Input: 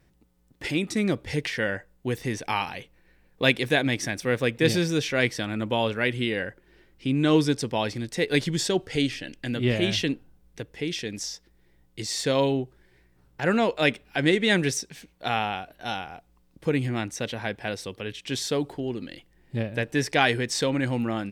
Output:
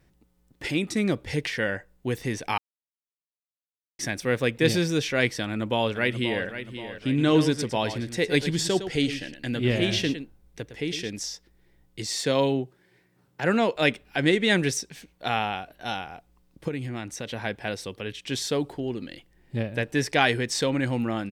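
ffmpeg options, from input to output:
ffmpeg -i in.wav -filter_complex "[0:a]asplit=2[link_01][link_02];[link_02]afade=type=in:start_time=5.42:duration=0.01,afade=type=out:start_time=6.45:duration=0.01,aecho=0:1:530|1060|1590|2120|2650:0.281838|0.140919|0.0704596|0.0352298|0.0176149[link_03];[link_01][link_03]amix=inputs=2:normalize=0,asettb=1/sr,asplit=3[link_04][link_05][link_06];[link_04]atrim=end=7.074[link_07];[link_05]atrim=start=7.07:end=11.1,asetpts=PTS-STARTPTS,afade=type=in:duration=0.004:curve=qsin,afade=type=out:start_time=4.026:duration=0.004:curve=qsin,aecho=1:1:109:0.299,atrim=end_sample=177723[link_08];[link_06]atrim=start=11.096[link_09];[link_07][link_08]acrossfade=duration=0.004:curve1=hsin:curve2=qsin[link_10];[link_10][link_09]acrossfade=duration=0.004:curve1=qsin:curve2=hsin,asettb=1/sr,asplit=3[link_11][link_12][link_13];[link_11]atrim=end=12.164[link_14];[link_12]atrim=start=12.16:end=13.76,asetpts=PTS-STARTPTS,afade=type=in:duration=0.004:curve=qsin,afade=type=out:start_time=1.596:duration=0.004:curve=qsin,highpass=frequency=110:width=0.5412,highpass=frequency=110:width=1.3066[link_15];[link_13]atrim=start=13.756[link_16];[link_14][link_15]acrossfade=duration=0.004:curve1=hsin:curve2=qsin[link_17];[link_17][link_16]acrossfade=duration=0.004:curve1=qsin:curve2=hsin,asettb=1/sr,asplit=3[link_18][link_19][link_20];[link_18]atrim=end=16.684[link_21];[link_19]atrim=start=16.68:end=17.32,asetpts=PTS-STARTPTS,afade=type=in:duration=0.004:curve=qsin,afade=type=out:start_time=0.636:duration=0.004:curve=qsin,acompressor=threshold=-33dB:ratio=2:attack=3.2:release=140:knee=1:detection=peak[link_22];[link_20]atrim=start=17.316[link_23];[link_21][link_22]acrossfade=duration=0.004:curve1=hsin:curve2=qsin[link_24];[link_24][link_23]acrossfade=duration=0.004:curve1=qsin:curve2=hsin,asplit=3[link_25][link_26][link_27];[link_25]atrim=end=2.58,asetpts=PTS-STARTPTS,afade=type=out:start_time=2.576:duration=0.004:curve=hsin[link_28];[link_26]atrim=start=2.58:end=3.99,asetpts=PTS-STARTPTS,volume=0[link_29];[link_27]atrim=start=3.99,asetpts=PTS-STARTPTS,afade=type=in:duration=0.004:curve=hsin[link_30];[link_28][link_29][link_30]concat=n=3:v=0:a=1" out.wav

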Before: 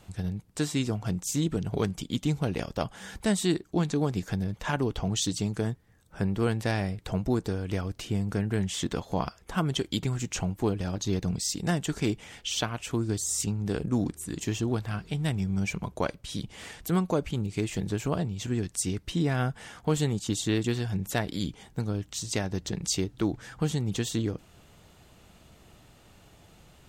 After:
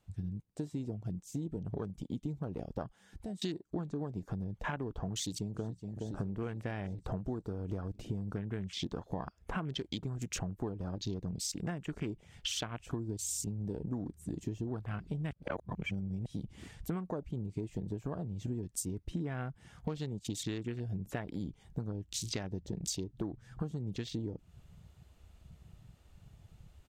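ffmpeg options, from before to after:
ffmpeg -i in.wav -filter_complex "[0:a]asettb=1/sr,asplit=3[link_01][link_02][link_03];[link_01]atrim=end=2.894[link_04];[link_02]atrim=start=2.89:end=3.42,asetpts=PTS-STARTPTS,afade=type=in:duration=0.004:curve=qsin,afade=type=out:start_time=0.526:duration=0.004:curve=qsin,acompressor=threshold=-46dB:ratio=2.5:attack=3.2:release=140:knee=1:detection=peak[link_05];[link_03]atrim=start=3.416[link_06];[link_04][link_05]acrossfade=duration=0.004:curve1=hsin:curve2=qsin[link_07];[link_07][link_06]acrossfade=duration=0.004:curve1=qsin:curve2=hsin,asplit=2[link_08][link_09];[link_09]afade=type=in:start_time=5.12:duration=0.01,afade=type=out:start_time=5.69:duration=0.01,aecho=0:1:420|840|1260|1680|2100|2520|2940|3360|3780:0.237137|0.165996|0.116197|0.0813381|0.0569367|0.0398557|0.027899|0.0195293|0.0136705[link_10];[link_08][link_10]amix=inputs=2:normalize=0,asplit=3[link_11][link_12][link_13];[link_11]atrim=end=15.312[link_14];[link_12]atrim=start=15.308:end=16.262,asetpts=PTS-STARTPTS,areverse[link_15];[link_13]atrim=start=16.258[link_16];[link_14][link_15]acrossfade=duration=0.004:curve1=hsin:curve2=hsin[link_17];[link_17][link_16]acrossfade=duration=0.004:curve1=hsin:curve2=hsin,dynaudnorm=framelen=680:gausssize=9:maxgain=7dB,afwtdn=0.0224,acompressor=threshold=-31dB:ratio=10,volume=-3dB" out.wav

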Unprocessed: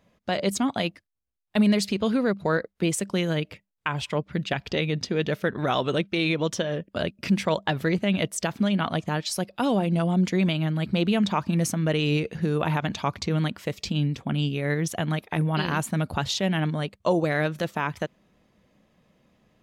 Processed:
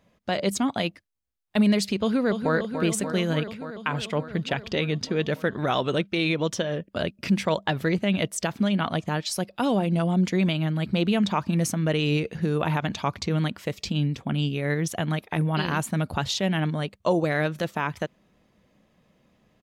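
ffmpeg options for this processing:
ffmpeg -i in.wav -filter_complex "[0:a]asplit=2[link_01][link_02];[link_02]afade=type=in:start_time=2.01:duration=0.01,afade=type=out:start_time=2.54:duration=0.01,aecho=0:1:290|580|870|1160|1450|1740|2030|2320|2610|2900|3190|3480:0.421697|0.337357|0.269886|0.215909|0.172727|0.138182|0.110545|0.0884362|0.0707489|0.0565991|0.0452793|0.0362235[link_03];[link_01][link_03]amix=inputs=2:normalize=0" out.wav

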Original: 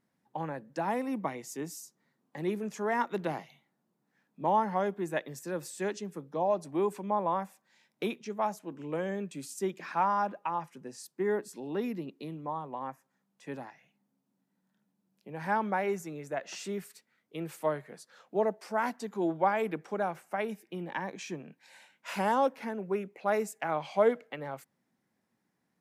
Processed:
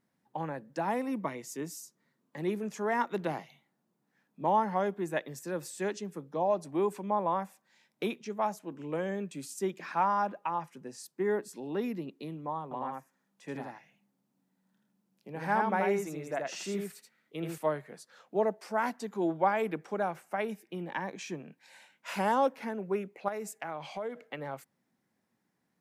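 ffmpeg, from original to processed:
ffmpeg -i in.wav -filter_complex "[0:a]asettb=1/sr,asplit=3[link_01][link_02][link_03];[link_01]atrim=end=1.104[link_04];[link_02]atrim=start=1.1:end=2.39,asetpts=PTS-STARTPTS,afade=type=in:duration=0.004:curve=qsin,afade=type=out:start_time=1.286:duration=0.004:curve=qsin,bandreject=frequency=780:width=7.1[link_05];[link_03]atrim=start=2.386[link_06];[link_04][link_05]acrossfade=duration=0.004:curve1=hsin:curve2=qsin[link_07];[link_07][link_06]acrossfade=duration=0.004:curve1=qsin:curve2=hsin,asettb=1/sr,asplit=3[link_08][link_09][link_10];[link_08]atrim=end=12.634[link_11];[link_09]atrim=start=12.63:end=17.58,asetpts=PTS-STARTPTS,afade=type=in:duration=0.004:curve=qsin,afade=type=out:start_time=4.946:duration=0.004:curve=qsin,aecho=1:1:80:0.708,atrim=end_sample=218295[link_12];[link_10]atrim=start=17.576[link_13];[link_11][link_12]acrossfade=duration=0.004:curve1=hsin:curve2=qsin[link_14];[link_14][link_13]acrossfade=duration=0.004:curve1=qsin:curve2=hsin,asettb=1/sr,asplit=3[link_15][link_16][link_17];[link_15]atrim=end=23.284[link_18];[link_16]atrim=start=23.28:end=24.33,asetpts=PTS-STARTPTS,afade=type=in:duration=0.004:curve=qsin,afade=type=out:start_time=1.046:duration=0.004:curve=qsin,acompressor=threshold=-34dB:ratio=5:attack=3.2:release=140:knee=1:detection=peak[link_19];[link_17]atrim=start=24.326[link_20];[link_18][link_19]acrossfade=duration=0.004:curve1=hsin:curve2=qsin[link_21];[link_21][link_20]acrossfade=duration=0.004:curve1=qsin:curve2=hsin" out.wav

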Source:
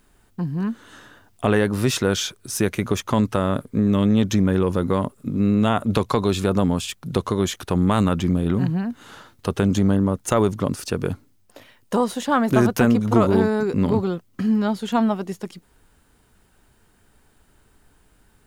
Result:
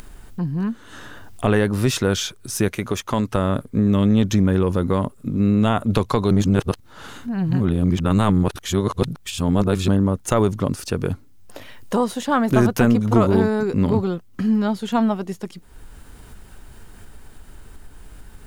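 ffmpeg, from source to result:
ffmpeg -i in.wav -filter_complex "[0:a]asettb=1/sr,asplit=3[link_01][link_02][link_03];[link_01]atrim=end=2.684[link_04];[link_02]atrim=start=2.68:end=3.32,asetpts=PTS-STARTPTS,afade=type=in:duration=0.004:curve=qsin,afade=type=out:start_time=0.636:duration=0.004:curve=qsin,lowshelf=frequency=230:gain=-7[link_05];[link_03]atrim=start=3.316[link_06];[link_04][link_05]acrossfade=duration=0.004:curve1=hsin:curve2=qsin[link_07];[link_07][link_06]acrossfade=duration=0.004:curve1=qsin:curve2=hsin,asplit=3[link_08][link_09][link_10];[link_08]atrim=end=6.312[link_11];[link_09]atrim=start=6.308:end=9.882,asetpts=PTS-STARTPTS,areverse[link_12];[link_10]atrim=start=9.878[link_13];[link_11][link_12]acrossfade=duration=0.004:curve1=hsin:curve2=hsin[link_14];[link_14][link_13]acrossfade=duration=0.004:curve1=hsin:curve2=hsin,lowshelf=frequency=63:gain=11.5,acompressor=mode=upward:threshold=-28dB:ratio=2.5" out.wav

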